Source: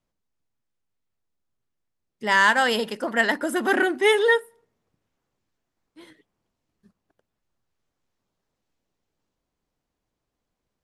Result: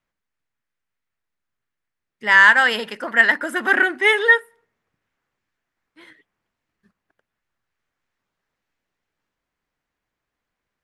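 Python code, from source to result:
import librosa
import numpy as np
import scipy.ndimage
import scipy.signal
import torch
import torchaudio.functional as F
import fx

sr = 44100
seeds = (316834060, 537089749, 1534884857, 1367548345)

y = fx.peak_eq(x, sr, hz=1800.0, db=12.5, octaves=1.6)
y = F.gain(torch.from_numpy(y), -4.0).numpy()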